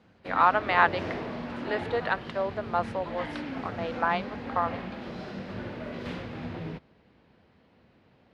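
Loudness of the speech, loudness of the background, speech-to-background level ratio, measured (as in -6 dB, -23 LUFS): -28.5 LUFS, -37.0 LUFS, 8.5 dB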